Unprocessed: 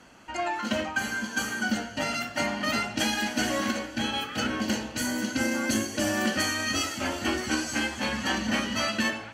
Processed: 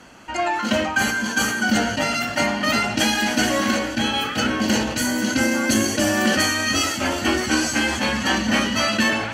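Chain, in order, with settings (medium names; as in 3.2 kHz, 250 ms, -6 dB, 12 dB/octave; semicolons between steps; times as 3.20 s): decay stretcher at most 48 dB/s; trim +7 dB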